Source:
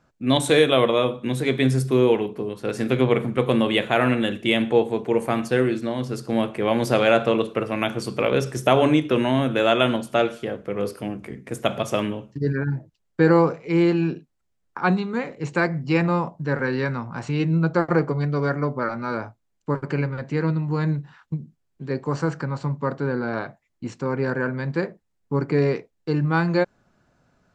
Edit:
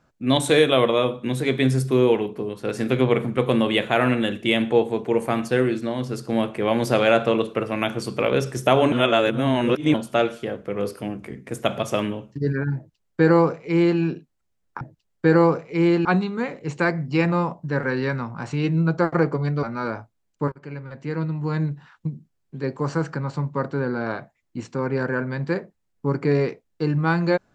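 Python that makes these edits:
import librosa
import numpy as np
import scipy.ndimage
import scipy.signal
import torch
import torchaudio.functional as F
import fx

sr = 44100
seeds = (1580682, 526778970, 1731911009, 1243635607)

y = fx.edit(x, sr, fx.reverse_span(start_s=8.92, length_s=1.02),
    fx.duplicate(start_s=12.76, length_s=1.24, to_s=14.81),
    fx.cut(start_s=18.39, length_s=0.51),
    fx.fade_in_from(start_s=19.79, length_s=1.55, curve='qsin', floor_db=-20.0), tone=tone)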